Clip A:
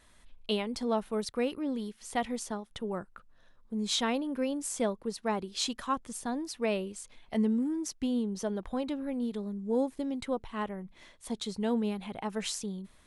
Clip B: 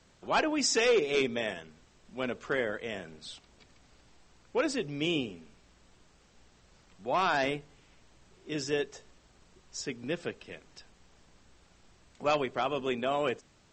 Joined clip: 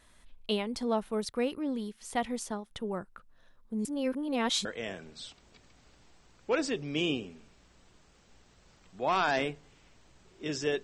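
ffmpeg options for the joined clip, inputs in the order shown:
-filter_complex "[0:a]apad=whole_dur=10.83,atrim=end=10.83,asplit=2[s0][s1];[s0]atrim=end=3.852[s2];[s1]atrim=start=3.848:end=4.652,asetpts=PTS-STARTPTS,areverse[s3];[1:a]atrim=start=2.708:end=8.89[s4];[s2][s3]acrossfade=d=0.004:c1=hsin:c2=hsin[s5];[s5][s4]acrossfade=d=0.004:c1=hsin:c2=hsin"

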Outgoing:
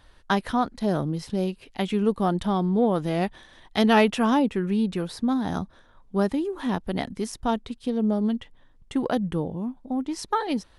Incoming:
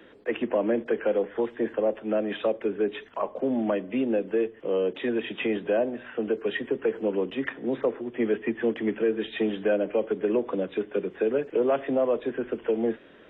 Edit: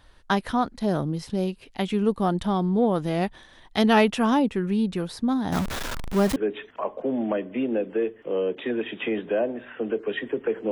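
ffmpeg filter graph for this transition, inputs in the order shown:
-filter_complex "[0:a]asettb=1/sr,asplit=3[s0][s1][s2];[s0]atrim=end=5.524[s3];[s1]atrim=start=5.52:end=6.36,asetpts=PTS-STARTPTS,afade=t=in:d=0.004:c=qsin,afade=t=out:st=0.836:d=0.004:c=qsin,aeval=exprs='val(0)+0.5*0.0596*sgn(val(0))':c=same[s4];[s2]atrim=start=6.356[s5];[s3][s4]acrossfade=d=0.004:c1=hsin:c2=qsin[s6];[s6][s5]acrossfade=d=0.004:c1=qsin:c2=hsin,apad=whole_dur=10.71,atrim=end=10.71,atrim=end=6.362[s7];[1:a]atrim=start=2.738:end=7.09[s8];[s7][s8]acrossfade=d=0.004:c1=hsin:c2=hsin"

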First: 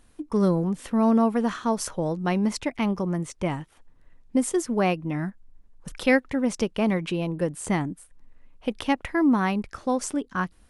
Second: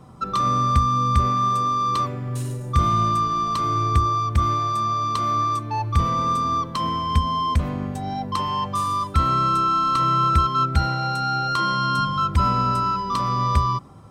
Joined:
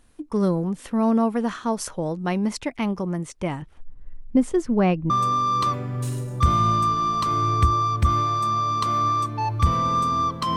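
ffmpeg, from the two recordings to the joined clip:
-filter_complex "[0:a]asettb=1/sr,asplit=3[s0][s1][s2];[s0]atrim=end=3.624[s3];[s1]atrim=start=3.62:end=5.1,asetpts=PTS-STARTPTS,afade=t=in:d=0.004:c=qsin,afade=t=out:st=1.476:d=0.004:c=qsin,aemphasis=mode=reproduction:type=bsi[s4];[s2]atrim=start=5.096[s5];[s3][s4]acrossfade=d=0.004:c1=hsin:c2=qsin[s6];[s6][s5]acrossfade=d=0.004:c1=qsin:c2=hsin,apad=whole_dur=10.56,atrim=end=10.56,atrim=end=5.102[s7];[1:a]atrim=start=1.428:end=6.89[s8];[s7][s8]acrossfade=d=0.004:c1=hsin:c2=hsin"

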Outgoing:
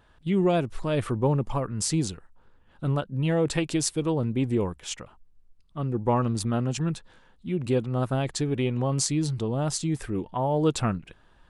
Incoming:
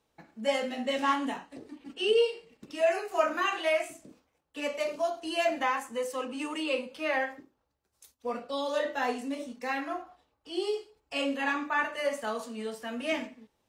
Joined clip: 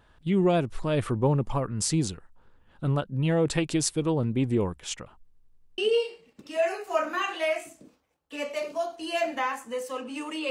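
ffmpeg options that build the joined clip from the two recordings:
-filter_complex "[0:a]apad=whole_dur=10.5,atrim=end=10.5,asplit=6[s0][s1][s2][s3][s4][s5];[s0]atrim=end=5.332[s6];[s1]atrim=start=5.238:end=5.332[s7];[s2]atrim=start=5.238:end=5.332[s8];[s3]atrim=start=5.238:end=5.332[s9];[s4]atrim=start=5.238:end=5.332[s10];[s5]atrim=start=5.238:end=5.332[s11];[1:a]atrim=start=2.018:end=6.74[s12];[s6][s7]acrossfade=d=0.004:c1=hsin:c2=hsin[s13];[s13][s8]acrossfade=d=0.004:c1=hsin:c2=hsin[s14];[s14][s9]acrossfade=d=0.004:c1=hsin:c2=hsin[s15];[s15][s10]acrossfade=d=0.004:c1=hsin:c2=hsin[s16];[s16][s11]acrossfade=d=0.004:c1=hsin:c2=hsin[s17];[s17][s12]acrossfade=d=0.004:c1=hsin:c2=hsin"

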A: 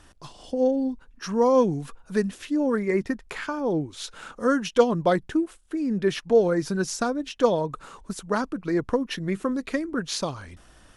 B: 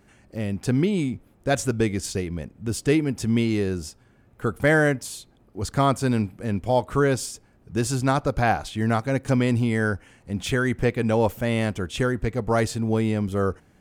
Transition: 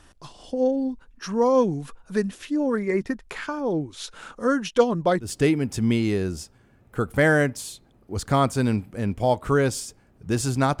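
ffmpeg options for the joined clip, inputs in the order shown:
-filter_complex "[0:a]apad=whole_dur=10.8,atrim=end=10.8,atrim=end=5.33,asetpts=PTS-STARTPTS[s0];[1:a]atrim=start=2.65:end=8.26,asetpts=PTS-STARTPTS[s1];[s0][s1]acrossfade=d=0.14:c1=tri:c2=tri"

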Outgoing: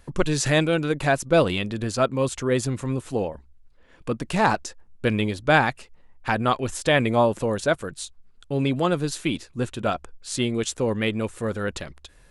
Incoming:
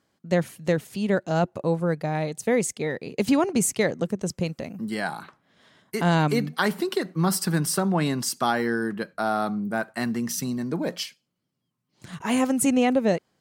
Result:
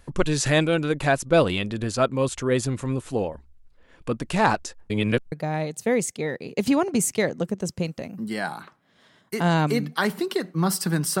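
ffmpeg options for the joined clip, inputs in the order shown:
-filter_complex "[0:a]apad=whole_dur=11.2,atrim=end=11.2,asplit=2[s0][s1];[s0]atrim=end=4.902[s2];[s1]atrim=start=4.898:end=5.322,asetpts=PTS-STARTPTS,areverse[s3];[1:a]atrim=start=1.928:end=7.81[s4];[s2][s3]acrossfade=d=0.004:c1=hsin:c2=hsin[s5];[s5][s4]acrossfade=d=0.004:c1=hsin:c2=hsin"

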